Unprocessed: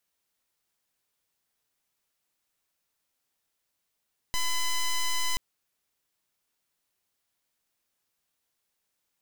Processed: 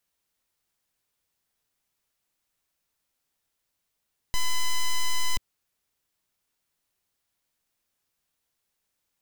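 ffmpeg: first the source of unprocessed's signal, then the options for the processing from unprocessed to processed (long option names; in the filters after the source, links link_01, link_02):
-f lavfi -i "aevalsrc='0.0501*(2*lt(mod(1010*t,1),0.08)-1)':duration=1.03:sample_rate=44100"
-af "lowshelf=frequency=120:gain=6.5"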